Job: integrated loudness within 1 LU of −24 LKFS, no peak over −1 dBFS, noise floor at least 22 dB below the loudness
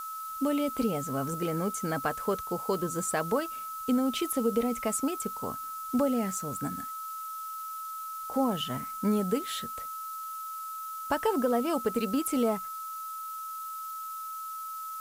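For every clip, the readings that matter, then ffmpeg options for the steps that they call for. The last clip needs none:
interfering tone 1,300 Hz; level of the tone −36 dBFS; background noise floor −39 dBFS; target noise floor −54 dBFS; integrated loudness −31.5 LKFS; sample peak −15.5 dBFS; target loudness −24.0 LKFS
→ -af "bandreject=frequency=1300:width=30"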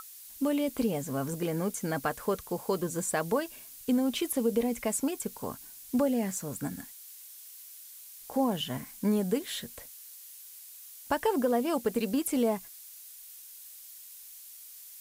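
interfering tone none found; background noise floor −49 dBFS; target noise floor −53 dBFS
→ -af "afftdn=noise_reduction=6:noise_floor=-49"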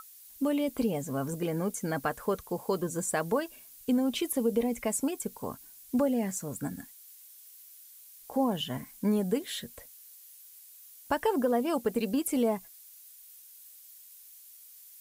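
background noise floor −53 dBFS; integrated loudness −31.0 LKFS; sample peak −16.0 dBFS; target loudness −24.0 LKFS
→ -af "volume=7dB"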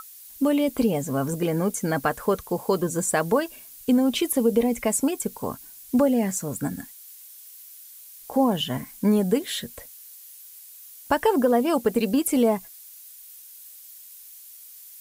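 integrated loudness −24.0 LKFS; sample peak −9.0 dBFS; background noise floor −46 dBFS

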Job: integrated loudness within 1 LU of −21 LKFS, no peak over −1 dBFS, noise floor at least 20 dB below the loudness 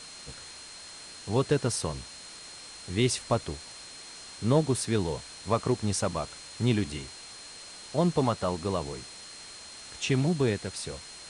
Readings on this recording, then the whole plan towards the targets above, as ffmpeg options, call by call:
interfering tone 4,200 Hz; level of the tone −47 dBFS; background noise floor −46 dBFS; target noise floor −50 dBFS; integrated loudness −29.5 LKFS; sample peak −12.0 dBFS; target loudness −21.0 LKFS
→ -af "bandreject=frequency=4200:width=30"
-af "afftdn=noise_reduction=6:noise_floor=-46"
-af "volume=8.5dB"

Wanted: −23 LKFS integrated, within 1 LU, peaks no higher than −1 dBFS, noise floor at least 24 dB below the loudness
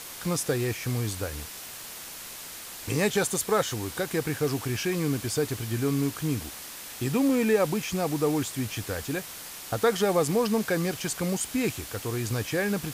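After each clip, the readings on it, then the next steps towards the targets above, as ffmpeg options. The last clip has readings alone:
background noise floor −41 dBFS; target noise floor −53 dBFS; integrated loudness −28.5 LKFS; sample peak −12.0 dBFS; target loudness −23.0 LKFS
→ -af "afftdn=noise_reduction=12:noise_floor=-41"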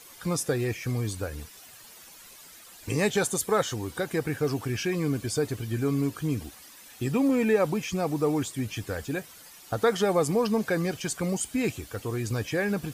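background noise floor −50 dBFS; target noise floor −52 dBFS
→ -af "afftdn=noise_reduction=6:noise_floor=-50"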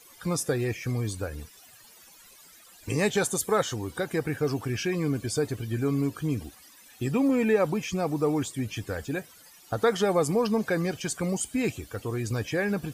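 background noise floor −53 dBFS; integrated loudness −28.0 LKFS; sample peak −12.0 dBFS; target loudness −23.0 LKFS
→ -af "volume=5dB"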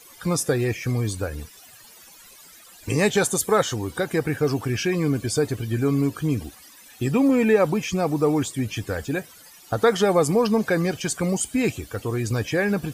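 integrated loudness −23.0 LKFS; sample peak −7.0 dBFS; background noise floor −48 dBFS

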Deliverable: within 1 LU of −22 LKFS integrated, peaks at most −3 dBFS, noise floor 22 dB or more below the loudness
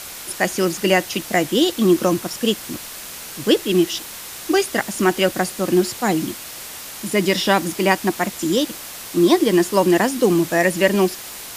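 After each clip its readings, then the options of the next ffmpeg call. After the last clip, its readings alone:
background noise floor −35 dBFS; target noise floor −41 dBFS; integrated loudness −19.0 LKFS; sample peak −1.5 dBFS; target loudness −22.0 LKFS
→ -af "afftdn=noise_reduction=6:noise_floor=-35"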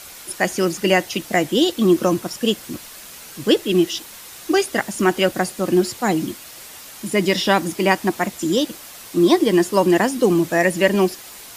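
background noise floor −39 dBFS; target noise floor −41 dBFS
→ -af "afftdn=noise_reduction=6:noise_floor=-39"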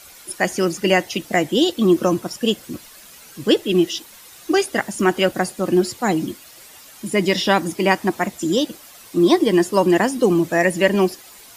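background noise floor −44 dBFS; integrated loudness −19.0 LKFS; sample peak −2.0 dBFS; target loudness −22.0 LKFS
→ -af "volume=-3dB"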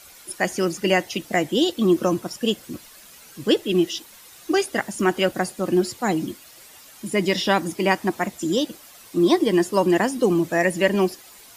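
integrated loudness −22.0 LKFS; sample peak −5.0 dBFS; background noise floor −47 dBFS

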